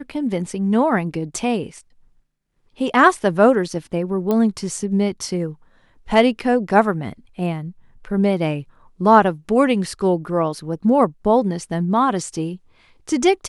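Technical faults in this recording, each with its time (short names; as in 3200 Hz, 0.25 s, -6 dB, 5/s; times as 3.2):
4.31 pop -10 dBFS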